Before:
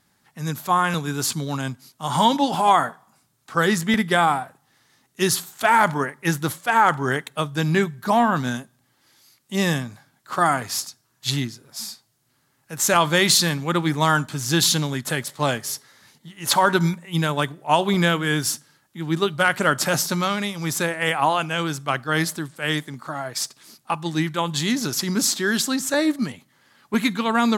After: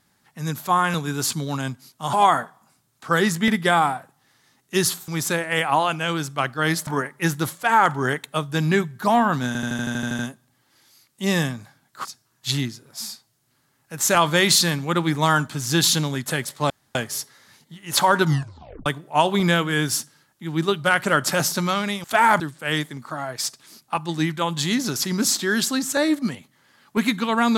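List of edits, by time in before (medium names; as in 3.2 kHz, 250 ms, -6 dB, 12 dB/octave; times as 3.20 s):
2.13–2.59 s: delete
5.54–5.90 s: swap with 20.58–22.37 s
8.50 s: stutter 0.08 s, 10 plays
10.36–10.84 s: delete
15.49 s: insert room tone 0.25 s
16.79 s: tape stop 0.61 s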